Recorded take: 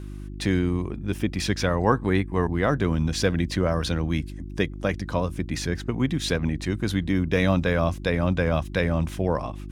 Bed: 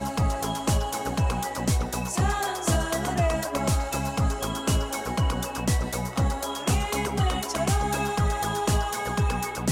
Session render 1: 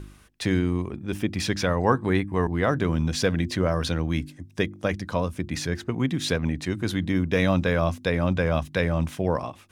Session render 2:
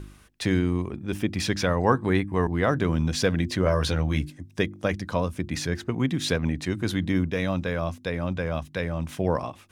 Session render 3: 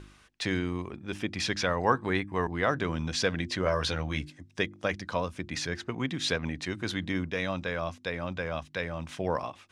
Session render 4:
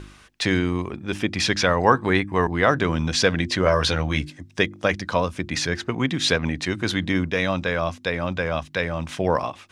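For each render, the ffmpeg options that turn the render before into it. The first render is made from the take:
-af "bandreject=f=50:t=h:w=4,bandreject=f=100:t=h:w=4,bandreject=f=150:t=h:w=4,bandreject=f=200:t=h:w=4,bandreject=f=250:t=h:w=4,bandreject=f=300:t=h:w=4,bandreject=f=350:t=h:w=4"
-filter_complex "[0:a]asettb=1/sr,asplit=3[a][b][c];[a]atrim=end=3.644[d];[b]atrim=start=3.64:end=4.3,asetpts=PTS-STARTPTS,afade=t=in:d=0.004:c=qsin,afade=t=out:st=0.656:d=0.004:c=qsin,asplit=2[e][f];[f]adelay=14,volume=-4.5dB[g];[e][g]amix=inputs=2:normalize=0,atrim=end_sample=29106[h];[c]atrim=start=4.296[i];[d][h]acrossfade=d=0.004:c1=hsin:c2=qsin[j];[j][i]acrossfade=d=0.004:c1=qsin:c2=hsin,asplit=3[k][l][m];[k]atrim=end=7.302[n];[l]atrim=start=7.298:end=9.092,asetpts=PTS-STARTPTS,volume=-5dB[o];[m]atrim=start=9.088[p];[n][o]acrossfade=d=0.004:c1=hsin:c2=hsin[q];[q][p]acrossfade=d=0.004:c1=hsin:c2=hsin"
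-af "lowpass=6.7k,lowshelf=f=480:g=-9.5"
-af "volume=8.5dB,alimiter=limit=-2dB:level=0:latency=1"

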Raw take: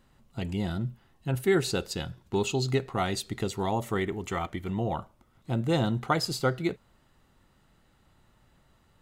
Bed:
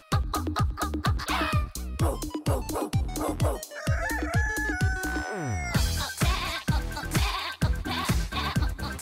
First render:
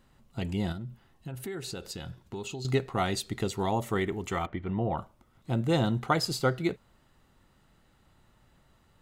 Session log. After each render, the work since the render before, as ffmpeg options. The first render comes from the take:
-filter_complex "[0:a]asettb=1/sr,asplit=3[a][b][c];[a]atrim=end=0.724[d];[b]atrim=start=0.72:end=2.65,asetpts=PTS-STARTPTS,afade=t=in:d=0.004:c=qsin,afade=t=out:st=1.926:d=0.004:c=qsin,acompressor=threshold=-35dB:ratio=5:attack=3.2:release=140:knee=1:detection=peak[e];[c]atrim=start=2.646[f];[d][e]acrossfade=d=0.004:c1=hsin:c2=qsin[g];[g][f]acrossfade=d=0.004:c1=qsin:c2=hsin,asettb=1/sr,asplit=3[h][i][j];[h]atrim=end=4.464[k];[i]atrim=start=4.46:end=4.98,asetpts=PTS-STARTPTS,afade=t=in:d=0.004:c=qsin,afade=t=out:st=0.516:d=0.004:c=qsin,lowpass=2.3k[l];[j]atrim=start=4.976[m];[k][l]acrossfade=d=0.004:c1=hsin:c2=qsin[n];[n][m]acrossfade=d=0.004:c1=qsin:c2=hsin"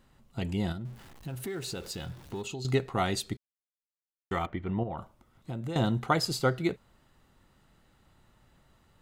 -filter_complex "[0:a]asettb=1/sr,asplit=3[a][b][c];[a]atrim=end=0.854[d];[b]atrim=start=0.85:end=2.42,asetpts=PTS-STARTPTS,afade=t=in:d=0.004:c=qsin,afade=t=out:st=1.566:d=0.004:c=qsin,aeval=exprs='val(0)+0.5*0.00422*sgn(val(0))':c=same[e];[c]atrim=start=2.416[f];[d][e]acrossfade=d=0.004:c1=hsin:c2=qsin[g];[g][f]acrossfade=d=0.004:c1=qsin:c2=hsin,asettb=1/sr,asplit=3[h][i][j];[h]atrim=end=4.834[k];[i]atrim=start=4.83:end=5.76,asetpts=PTS-STARTPTS,afade=t=in:d=0.004:c=qsin,afade=t=out:st=0.926:d=0.004:c=qsin,acompressor=threshold=-32dB:ratio=6:attack=3.2:release=140:knee=1:detection=peak[l];[j]atrim=start=5.756[m];[k][l]acrossfade=d=0.004:c1=hsin:c2=qsin[n];[n][m]acrossfade=d=0.004:c1=qsin:c2=hsin,asplit=3[o][p][q];[o]atrim=end=3.37,asetpts=PTS-STARTPTS,afade=t=out:st=3.366:d=0.004:c=hsin[r];[p]atrim=start=3.37:end=4.31,asetpts=PTS-STARTPTS,volume=0[s];[q]atrim=start=4.31,asetpts=PTS-STARTPTS,afade=t=in:d=0.004:c=hsin[t];[r][s][t]concat=n=3:v=0:a=1"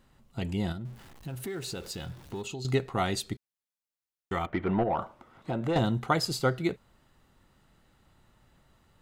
-filter_complex "[0:a]asettb=1/sr,asplit=3[a][b][c];[a]atrim=end=4.534[d];[b]atrim=start=4.53:end=5.79,asetpts=PTS-STARTPTS,afade=t=in:d=0.004:c=qsin,afade=t=out:st=1.256:d=0.004:c=qsin,asplit=2[e][f];[f]highpass=f=720:p=1,volume=22dB,asoftclip=type=tanh:threshold=-14.5dB[g];[e][g]amix=inputs=2:normalize=0,lowpass=f=1.2k:p=1,volume=-6dB[h];[c]atrim=start=5.786[i];[d][h]acrossfade=d=0.004:c1=hsin:c2=qsin[j];[j][i]acrossfade=d=0.004:c1=qsin:c2=hsin"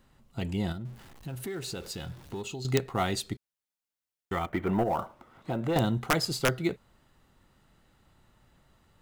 -filter_complex "[0:a]acrossover=split=770[a][b];[b]acrusher=bits=5:mode=log:mix=0:aa=0.000001[c];[a][c]amix=inputs=2:normalize=0,aeval=exprs='(mod(5.01*val(0)+1,2)-1)/5.01':c=same"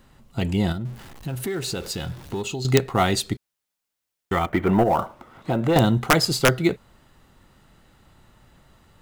-af "volume=8.5dB"

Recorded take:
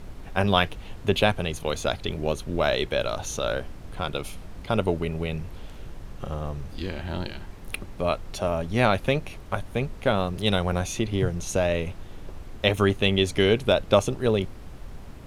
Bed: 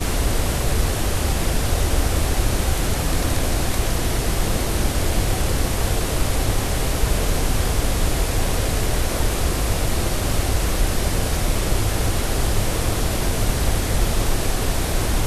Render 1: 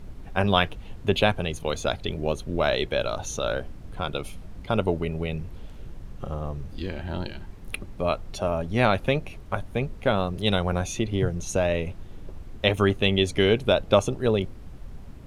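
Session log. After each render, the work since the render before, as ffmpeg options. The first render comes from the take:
-af "afftdn=nr=6:nf=-41"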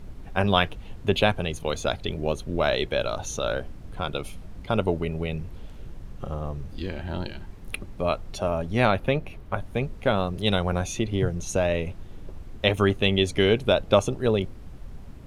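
-filter_complex "[0:a]asettb=1/sr,asplit=3[a][b][c];[a]atrim=end=8.914[d];[b]atrim=start=8.91:end=9.62,asetpts=PTS-STARTPTS,afade=t=in:d=0.004:c=qsin,afade=t=out:st=0.706:d=0.004:c=qsin,equalizer=f=7.2k:t=o:w=1.7:g=-7[e];[c]atrim=start=9.616[f];[d][e]acrossfade=d=0.004:c1=hsin:c2=qsin[g];[g][f]acrossfade=d=0.004:c1=qsin:c2=hsin"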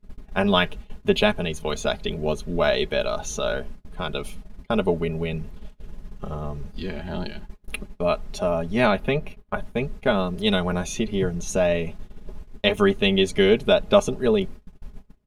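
-af "agate=range=-28dB:threshold=-36dB:ratio=16:detection=peak,aecho=1:1:4.8:0.7"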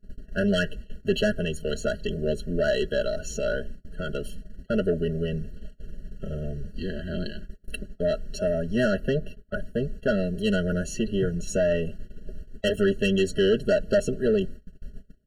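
-af "asoftclip=type=tanh:threshold=-15dB,afftfilt=real='re*eq(mod(floor(b*sr/1024/660),2),0)':imag='im*eq(mod(floor(b*sr/1024/660),2),0)':win_size=1024:overlap=0.75"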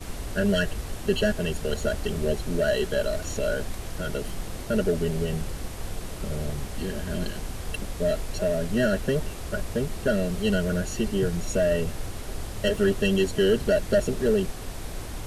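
-filter_complex "[1:a]volume=-15dB[a];[0:a][a]amix=inputs=2:normalize=0"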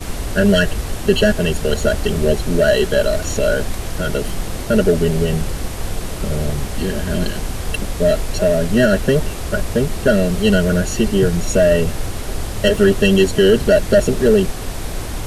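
-af "volume=10dB,alimiter=limit=-3dB:level=0:latency=1"

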